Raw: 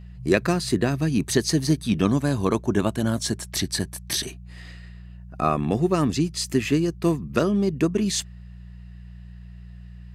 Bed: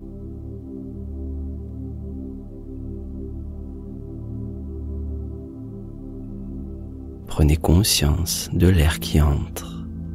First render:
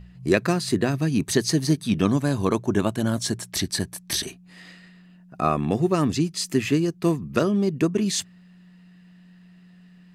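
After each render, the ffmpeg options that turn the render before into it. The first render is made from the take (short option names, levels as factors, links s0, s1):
-af "bandreject=f=60:t=h:w=4,bandreject=f=120:t=h:w=4"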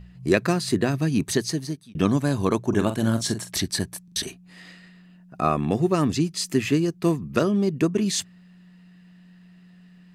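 -filter_complex "[0:a]asettb=1/sr,asplit=3[s0][s1][s2];[s0]atrim=end=2.684[s3];[s1]atrim=start=2.68:end=3.52,asetpts=PTS-STARTPTS,afade=t=in:d=0.004:c=qsin,afade=t=out:st=0.836:d=0.004:c=qsin,asplit=2[s4][s5];[s5]adelay=44,volume=0.335[s6];[s4][s6]amix=inputs=2:normalize=0,atrim=end_sample=37044[s7];[s2]atrim=start=3.516[s8];[s3][s7]acrossfade=d=0.004:c1=hsin:c2=qsin[s9];[s9][s8]acrossfade=d=0.004:c1=qsin:c2=hsin,asplit=5[s10][s11][s12][s13][s14];[s10]atrim=end=1.95,asetpts=PTS-STARTPTS,afade=t=out:st=1.22:d=0.73[s15];[s11]atrim=start=1.95:end=4.082,asetpts=PTS-STARTPTS,afade=t=in:d=0.004:c=hsin[s16];[s12]atrim=start=4.038:end=4.082[s17];[s13]atrim=start=4.038:end=4.082[s18];[s14]atrim=start=4.158[s19];[s15][s16]concat=n=2:v=0:a=1[s20];[s20][s17]acrossfade=d=0.004:c1=hsin:c2=hsin[s21];[s21][s18]acrossfade=d=0.004:c1=hsin:c2=hsin[s22];[s22][s19]acrossfade=d=0.004:c1=hsin:c2=hsin"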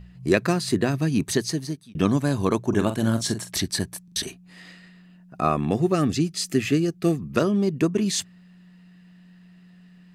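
-filter_complex "[0:a]asettb=1/sr,asplit=3[s0][s1][s2];[s0]atrim=end=5.924[s3];[s1]atrim=start=5.92:end=7.19,asetpts=PTS-STARTPTS,afade=t=in:d=0.004:c=qsin,afade=t=out:st=1.266:d=0.004:c=qsin,asuperstop=centerf=970:order=8:qfactor=4.3[s4];[s2]atrim=start=7.186[s5];[s3][s4]acrossfade=d=0.004:c1=hsin:c2=qsin[s6];[s6][s5]acrossfade=d=0.004:c1=qsin:c2=hsin"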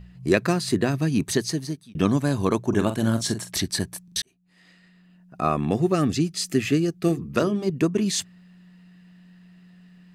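-filter_complex "[0:a]asettb=1/sr,asplit=3[s0][s1][s2];[s0]atrim=end=7.084[s3];[s1]atrim=start=7.08:end=7.7,asetpts=PTS-STARTPTS,afade=t=in:d=0.004:c=qsin,afade=t=out:st=0.616:d=0.004:c=qsin,bandreject=f=50:t=h:w=6,bandreject=f=100:t=h:w=6,bandreject=f=150:t=h:w=6,bandreject=f=200:t=h:w=6,bandreject=f=250:t=h:w=6,bandreject=f=300:t=h:w=6,bandreject=f=350:t=h:w=6,bandreject=f=400:t=h:w=6,bandreject=f=450:t=h:w=6[s4];[s2]atrim=start=7.696[s5];[s3][s4]acrossfade=d=0.004:c1=hsin:c2=qsin[s6];[s6][s5]acrossfade=d=0.004:c1=qsin:c2=hsin,asplit=2[s7][s8];[s7]atrim=end=4.22,asetpts=PTS-STARTPTS,afade=t=out:st=4.216:d=0.004:c=hsin[s9];[s8]atrim=start=4.22,asetpts=PTS-STARTPTS,afade=t=in:d=1.4[s10];[s9][s10]concat=n=2:v=0:a=1"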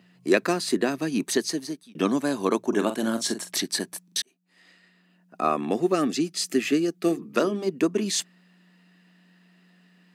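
-af "highpass=f=230:w=0.5412,highpass=f=230:w=1.3066"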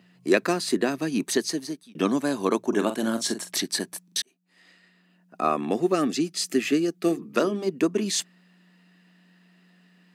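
-af anull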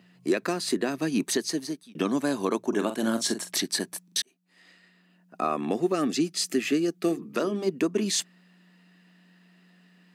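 -af "alimiter=limit=0.188:level=0:latency=1:release=199"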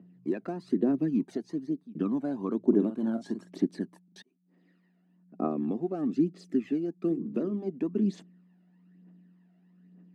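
-af "bandpass=f=250:t=q:w=1.3:csg=0,aphaser=in_gain=1:out_gain=1:delay=1.5:decay=0.58:speed=1.1:type=triangular"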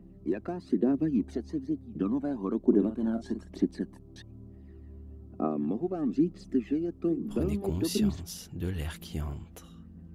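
-filter_complex "[1:a]volume=0.133[s0];[0:a][s0]amix=inputs=2:normalize=0"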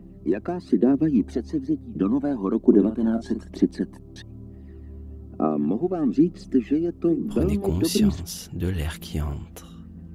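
-af "volume=2.24"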